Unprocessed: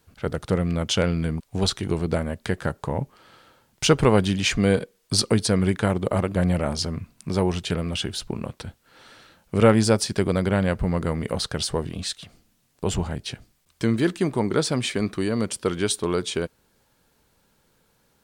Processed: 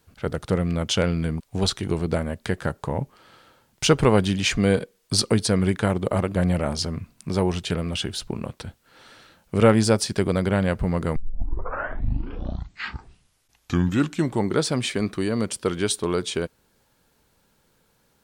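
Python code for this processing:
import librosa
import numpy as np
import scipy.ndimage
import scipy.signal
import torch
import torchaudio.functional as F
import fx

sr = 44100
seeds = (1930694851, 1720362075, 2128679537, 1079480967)

y = fx.edit(x, sr, fx.tape_start(start_s=11.16, length_s=3.41), tone=tone)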